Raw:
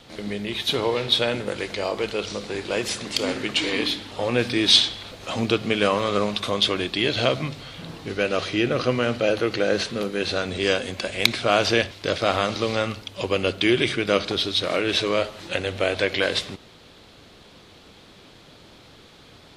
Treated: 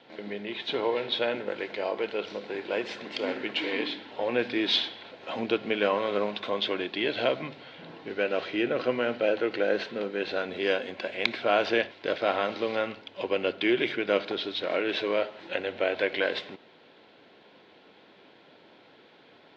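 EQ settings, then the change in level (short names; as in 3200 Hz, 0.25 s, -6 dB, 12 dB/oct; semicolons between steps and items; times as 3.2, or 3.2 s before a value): BPF 280–3100 Hz; Butterworth band-stop 1200 Hz, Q 7.3; air absorption 92 m; -3.0 dB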